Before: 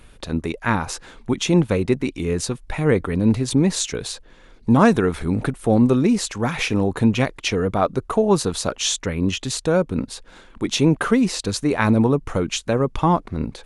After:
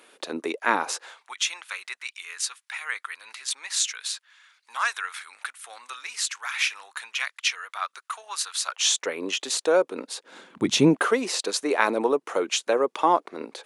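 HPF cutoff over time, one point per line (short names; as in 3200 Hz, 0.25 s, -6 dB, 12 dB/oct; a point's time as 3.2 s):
HPF 24 dB/oct
0.88 s 330 Hz
1.39 s 1300 Hz
8.61 s 1300 Hz
9.09 s 380 Hz
10.13 s 380 Hz
10.72 s 100 Hz
11.06 s 370 Hz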